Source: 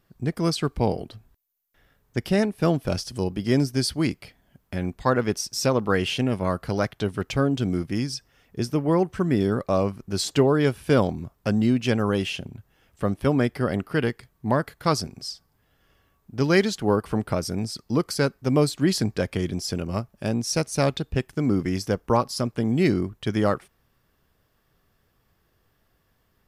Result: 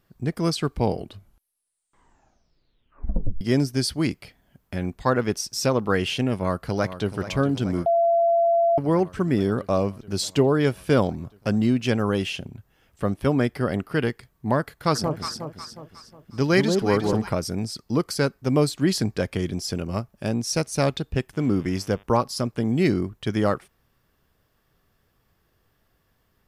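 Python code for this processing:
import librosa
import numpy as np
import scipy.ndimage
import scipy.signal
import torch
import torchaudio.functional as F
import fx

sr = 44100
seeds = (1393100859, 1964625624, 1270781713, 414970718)

y = fx.echo_throw(x, sr, start_s=6.36, length_s=0.81, ms=430, feedback_pct=80, wet_db=-12.5)
y = fx.dynamic_eq(y, sr, hz=1500.0, q=1.4, threshold_db=-43.0, ratio=4.0, max_db=-5, at=(9.78, 10.52))
y = fx.echo_alternate(y, sr, ms=181, hz=970.0, feedback_pct=63, wet_db=-3.5, at=(14.94, 17.28), fade=0.02)
y = fx.dmg_buzz(y, sr, base_hz=100.0, harmonics=36, level_db=-52.0, tilt_db=-3, odd_only=False, at=(21.33, 22.02), fade=0.02)
y = fx.edit(y, sr, fx.tape_stop(start_s=0.97, length_s=2.44),
    fx.bleep(start_s=7.86, length_s=0.92, hz=678.0, db=-16.0), tone=tone)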